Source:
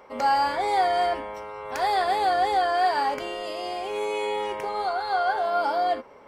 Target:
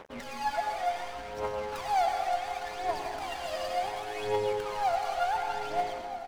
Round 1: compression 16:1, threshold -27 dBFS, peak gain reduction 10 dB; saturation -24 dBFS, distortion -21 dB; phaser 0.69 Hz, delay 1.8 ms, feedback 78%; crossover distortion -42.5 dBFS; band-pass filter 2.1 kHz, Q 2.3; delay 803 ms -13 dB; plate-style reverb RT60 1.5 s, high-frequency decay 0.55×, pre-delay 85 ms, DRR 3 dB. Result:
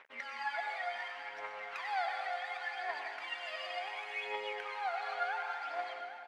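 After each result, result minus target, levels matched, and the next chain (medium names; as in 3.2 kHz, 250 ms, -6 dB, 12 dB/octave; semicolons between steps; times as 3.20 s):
2 kHz band +8.5 dB; saturation: distortion -12 dB; echo 470 ms early
compression 16:1, threshold -27 dBFS, peak gain reduction 10 dB; saturation -24 dBFS, distortion -21 dB; phaser 0.69 Hz, delay 1.8 ms, feedback 78%; crossover distortion -42.5 dBFS; delay 803 ms -13 dB; plate-style reverb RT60 1.5 s, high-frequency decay 0.55×, pre-delay 85 ms, DRR 3 dB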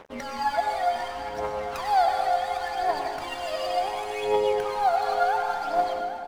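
saturation: distortion -12 dB; echo 470 ms early
compression 16:1, threshold -27 dBFS, peak gain reduction 10 dB; saturation -34.5 dBFS, distortion -10 dB; phaser 0.69 Hz, delay 1.8 ms, feedback 78%; crossover distortion -42.5 dBFS; delay 803 ms -13 dB; plate-style reverb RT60 1.5 s, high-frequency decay 0.55×, pre-delay 85 ms, DRR 3 dB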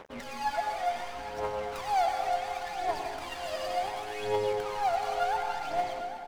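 echo 470 ms early
compression 16:1, threshold -27 dBFS, peak gain reduction 10 dB; saturation -34.5 dBFS, distortion -10 dB; phaser 0.69 Hz, delay 1.8 ms, feedback 78%; crossover distortion -42.5 dBFS; delay 1273 ms -13 dB; plate-style reverb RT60 1.5 s, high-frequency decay 0.55×, pre-delay 85 ms, DRR 3 dB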